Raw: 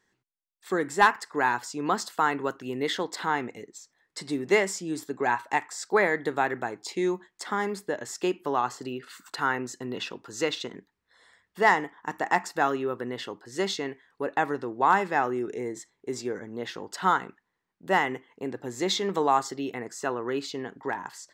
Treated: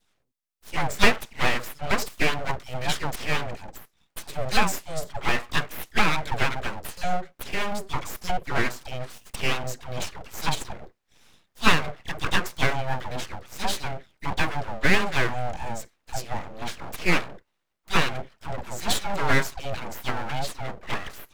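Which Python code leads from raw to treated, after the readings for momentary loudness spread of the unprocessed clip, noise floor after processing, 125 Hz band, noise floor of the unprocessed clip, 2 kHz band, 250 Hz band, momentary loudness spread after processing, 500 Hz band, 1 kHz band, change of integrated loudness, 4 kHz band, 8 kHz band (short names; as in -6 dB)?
13 LU, -74 dBFS, +10.0 dB, -80 dBFS, +2.5 dB, -1.0 dB, 14 LU, -3.5 dB, -2.5 dB, +0.5 dB, +6.0 dB, +3.0 dB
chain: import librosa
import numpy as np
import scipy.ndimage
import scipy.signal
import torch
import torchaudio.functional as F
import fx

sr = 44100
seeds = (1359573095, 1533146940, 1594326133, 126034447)

y = fx.dispersion(x, sr, late='lows', ms=96.0, hz=440.0)
y = np.abs(y)
y = y * librosa.db_to_amplitude(4.5)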